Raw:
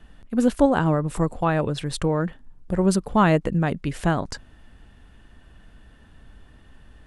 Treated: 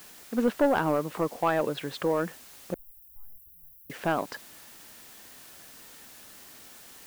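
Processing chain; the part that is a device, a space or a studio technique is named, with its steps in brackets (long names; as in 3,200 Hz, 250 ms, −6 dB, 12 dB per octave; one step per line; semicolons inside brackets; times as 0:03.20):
tape answering machine (band-pass filter 310–3,000 Hz; soft clipping −15 dBFS, distortion −13 dB; tape wow and flutter; white noise bed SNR 20 dB)
0:02.74–0:03.90: inverse Chebyshev band-stop filter 180–6,100 Hz, stop band 50 dB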